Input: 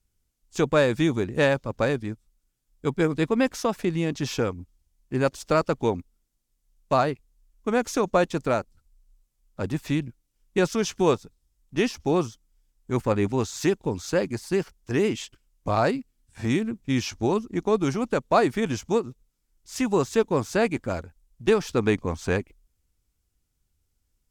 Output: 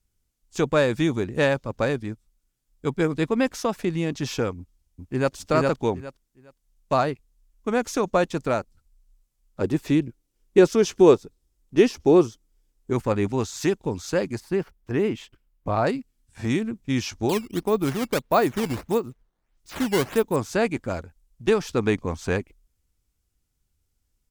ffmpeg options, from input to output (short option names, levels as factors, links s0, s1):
-filter_complex "[0:a]asplit=2[s0][s1];[s1]afade=t=in:st=4.57:d=0.01,afade=t=out:st=5.34:d=0.01,aecho=0:1:410|820|1230:0.891251|0.17825|0.03565[s2];[s0][s2]amix=inputs=2:normalize=0,asettb=1/sr,asplit=3[s3][s4][s5];[s3]atrim=end=9.614[s6];[s4]atrim=start=9.61:end=12.93,asetpts=PTS-STARTPTS,afade=t=in:d=0.004:c=qsin,afade=t=out:st=3.316:d=0.004:c=qsin,equalizer=f=380:w=1.4:g=9[s7];[s5]atrim=start=12.926[s8];[s6][s7]acrossfade=d=0.004:c1=hsin:c2=qsin[s9];[s9][s8]acrossfade=d=0.004:c1=qsin:c2=hsin,asettb=1/sr,asplit=3[s10][s11][s12];[s10]atrim=end=14.404[s13];[s11]atrim=start=14.4:end=15.87,asetpts=PTS-STARTPTS,afade=t=in:d=0.004:c=qsin,afade=t=out:st=1.466:d=0.004:c=qsin,equalizer=f=6900:t=o:w=1.9:g=-12[s14];[s12]atrim=start=15.866[s15];[s13][s14]acrossfade=d=0.004:c1=hsin:c2=qsin[s16];[s16][s15]acrossfade=d=0.004:c1=qsin:c2=hsin,asettb=1/sr,asplit=3[s17][s18][s19];[s17]atrim=end=17.294[s20];[s18]atrim=start=17.29:end=20.36,asetpts=PTS-STARTPTS,afade=t=in:d=0.004:c=qsin,afade=t=out:st=3.066:d=0.004:c=qsin,acrusher=samples=10:mix=1:aa=0.000001:lfo=1:lforange=16:lforate=1.6[s21];[s19]atrim=start=20.356[s22];[s20][s21]acrossfade=d=0.004:c1=hsin:c2=qsin[s23];[s23][s22]acrossfade=d=0.004:c1=qsin:c2=hsin"